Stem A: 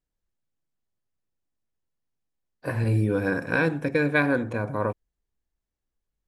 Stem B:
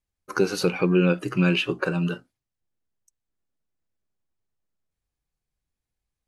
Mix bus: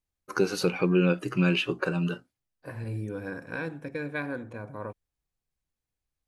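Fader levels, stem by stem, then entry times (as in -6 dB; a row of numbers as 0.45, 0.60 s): -11.0, -3.0 dB; 0.00, 0.00 s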